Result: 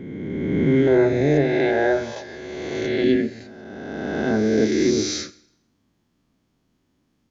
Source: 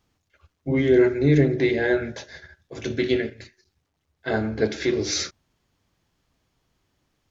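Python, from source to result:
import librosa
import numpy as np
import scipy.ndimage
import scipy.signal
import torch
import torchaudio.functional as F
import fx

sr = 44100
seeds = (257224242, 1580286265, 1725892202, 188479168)

y = fx.spec_swells(x, sr, rise_s=2.15)
y = fx.peak_eq(y, sr, hz=fx.steps((0.0, 200.0), (0.87, 720.0), (3.04, 240.0)), db=13.0, octaves=1.2)
y = fx.rev_schroeder(y, sr, rt60_s=0.74, comb_ms=27, drr_db=17.5)
y = F.gain(torch.from_numpy(y), -6.0).numpy()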